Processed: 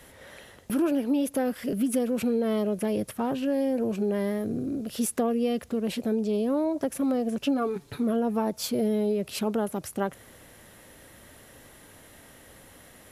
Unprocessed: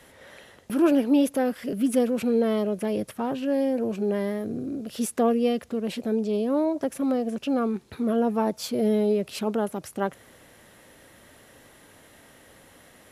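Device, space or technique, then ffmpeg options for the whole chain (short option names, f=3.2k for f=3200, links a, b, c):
ASMR close-microphone chain: -filter_complex "[0:a]asettb=1/sr,asplit=3[a][b][c];[a]atrim=end=7.414[d];[b]atrim=start=7.41:end=7.98,asetpts=PTS-STARTPTS,afade=t=in:d=0.004:c=qsin,afade=t=out:st=0.566:d=0.004:c=qsin,aecho=1:1:7:0.84,atrim=end_sample=25137[e];[c]atrim=start=7.976[f];[d][e]acrossfade=d=0.004:c1=hsin:c2=qsin[g];[g][f]acrossfade=d=0.004:c1=qsin:c2=hsin,lowshelf=f=100:g=7.5,acompressor=threshold=-22dB:ratio=6,highshelf=f=10k:g=7"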